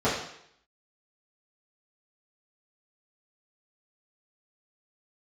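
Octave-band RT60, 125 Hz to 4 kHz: 0.65, 0.65, 0.70, 0.70, 0.75, 0.70 seconds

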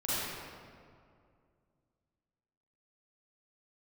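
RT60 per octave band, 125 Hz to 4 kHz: 2.9, 2.6, 2.4, 2.1, 1.7, 1.3 seconds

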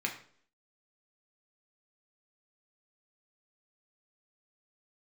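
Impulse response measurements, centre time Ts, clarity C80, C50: 18 ms, 13.0 dB, 9.5 dB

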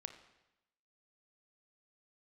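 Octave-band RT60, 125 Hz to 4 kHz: 0.95, 0.95, 0.90, 0.95, 0.90, 0.90 seconds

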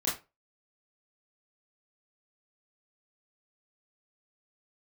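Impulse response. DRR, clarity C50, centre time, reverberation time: −7.5 dB, 7.5 dB, 35 ms, 0.25 s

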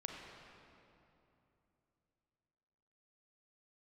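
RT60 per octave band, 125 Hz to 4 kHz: 3.8, 3.5, 3.1, 2.8, 2.3, 2.0 seconds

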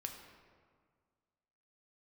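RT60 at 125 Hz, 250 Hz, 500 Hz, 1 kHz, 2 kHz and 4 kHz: 2.1, 2.0, 1.8, 1.8, 1.4, 1.0 seconds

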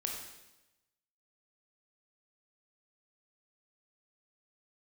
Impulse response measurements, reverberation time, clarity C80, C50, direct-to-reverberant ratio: 1.0 s, 5.5 dB, 3.0 dB, 0.5 dB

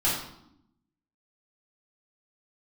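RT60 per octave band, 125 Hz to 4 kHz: 1.1, 1.2, 0.80, 0.75, 0.60, 0.60 seconds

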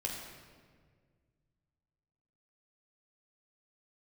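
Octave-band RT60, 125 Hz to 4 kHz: 2.8, 2.3, 2.0, 1.5, 1.5, 1.2 seconds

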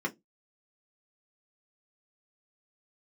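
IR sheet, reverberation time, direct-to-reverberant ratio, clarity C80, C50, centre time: 0.15 s, −1.5 dB, 33.0 dB, 23.0 dB, 8 ms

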